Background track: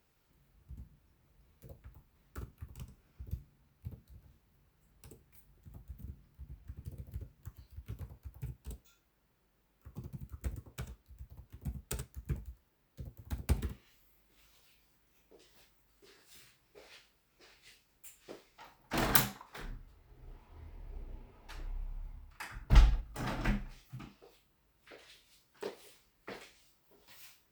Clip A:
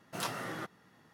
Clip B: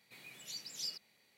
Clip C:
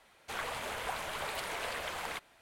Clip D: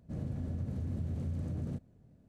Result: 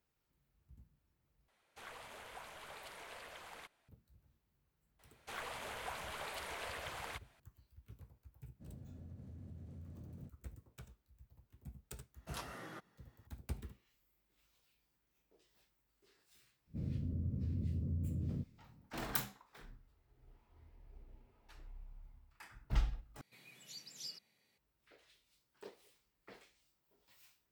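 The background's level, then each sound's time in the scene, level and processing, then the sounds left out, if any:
background track -11 dB
1.48 s: replace with C -14 dB
4.99 s: add C -7 dB
8.51 s: add D -15.5 dB, fades 0.10 s
12.14 s: add A -10 dB
16.65 s: add D -1.5 dB, fades 0.10 s + boxcar filter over 55 samples
23.21 s: replace with B -6.5 dB + bass shelf 170 Hz +7.5 dB

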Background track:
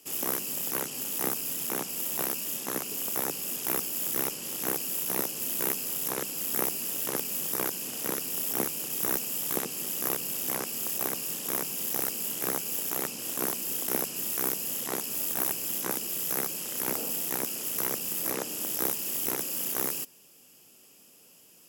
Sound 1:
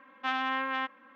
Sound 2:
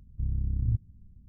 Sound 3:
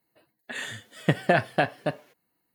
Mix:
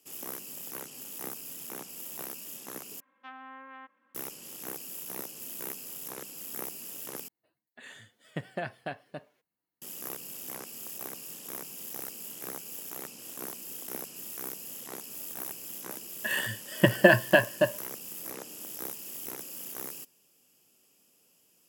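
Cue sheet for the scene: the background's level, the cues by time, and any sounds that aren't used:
background track -9.5 dB
3.00 s: replace with 1 -14.5 dB + low-pass that closes with the level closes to 1.7 kHz, closed at -26.5 dBFS
7.28 s: replace with 3 -14 dB
15.75 s: add 3 -0.5 dB + rippled EQ curve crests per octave 1.3, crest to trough 15 dB
not used: 2

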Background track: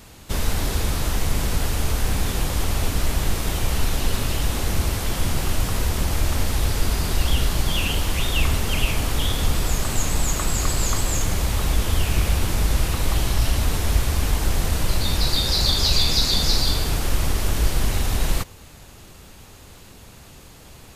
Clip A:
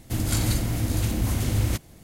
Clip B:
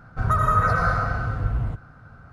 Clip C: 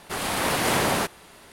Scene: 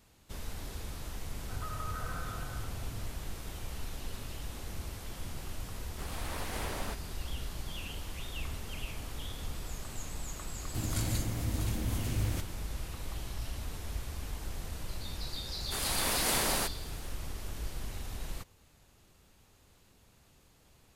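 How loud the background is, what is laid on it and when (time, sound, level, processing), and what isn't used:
background track -18.5 dB
1.32 s: add B -14.5 dB + compression 3:1, threshold -25 dBFS
5.88 s: add C -17 dB
10.64 s: add A -9.5 dB
15.61 s: add C -11 dB + treble shelf 4.3 kHz +11.5 dB

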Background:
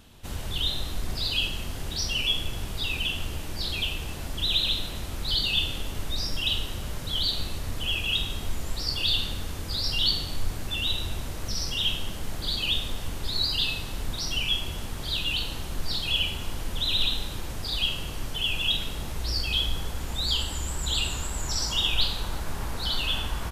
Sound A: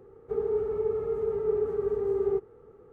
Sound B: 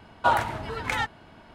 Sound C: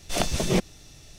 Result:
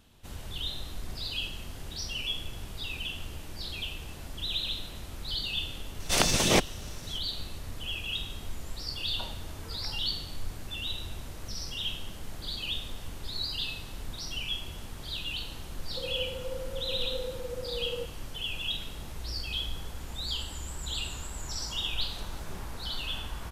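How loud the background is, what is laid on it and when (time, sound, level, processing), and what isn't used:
background -7.5 dB
6.00 s: add C -0.5 dB + spectral peaks clipped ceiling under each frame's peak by 15 dB
8.95 s: add B -16.5 dB + low-pass that closes with the level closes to 490 Hz, closed at -22.5 dBFS
15.66 s: add A -10 dB + frequency shift +85 Hz
22.01 s: add C -14.5 dB + compression 2:1, threshold -39 dBFS

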